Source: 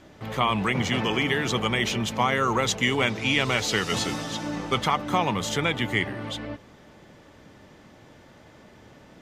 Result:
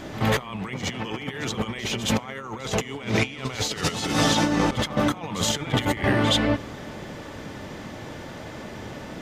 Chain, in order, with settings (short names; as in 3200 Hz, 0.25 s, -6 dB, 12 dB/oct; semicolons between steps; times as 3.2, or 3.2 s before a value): negative-ratio compressor -32 dBFS, ratio -0.5; pre-echo 69 ms -13 dB; on a send at -23 dB: reverb RT60 1.6 s, pre-delay 8 ms; on the sum: gain +7 dB